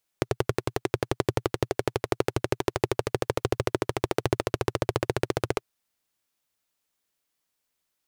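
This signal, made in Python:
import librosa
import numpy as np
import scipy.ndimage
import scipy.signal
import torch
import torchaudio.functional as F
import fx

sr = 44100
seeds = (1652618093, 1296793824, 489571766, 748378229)

y = fx.engine_single_rev(sr, seeds[0], length_s=5.41, rpm=1300, resonances_hz=(120.0, 380.0), end_rpm=1800)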